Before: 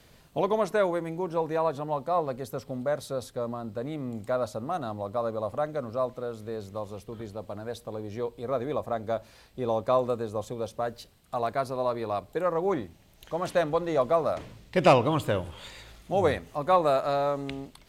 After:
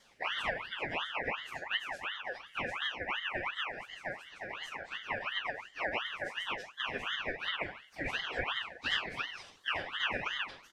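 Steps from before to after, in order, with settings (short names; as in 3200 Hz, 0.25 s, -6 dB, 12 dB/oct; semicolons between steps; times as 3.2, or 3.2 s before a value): reverb removal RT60 1.1 s; HPF 600 Hz 24 dB/oct; bell 2600 Hz -5 dB 1.9 oct; shoebox room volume 180 m³, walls mixed, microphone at 1.3 m; plain phase-vocoder stretch 0.6×; comb 5.2 ms, depth 64%; compressor 3:1, threshold -34 dBFS, peak gain reduction 13.5 dB; harmoniser -7 st -8 dB, +3 st -10 dB; air absorption 76 m; ring modulator with a swept carrier 1800 Hz, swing 40%, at 2.8 Hz; gain +2 dB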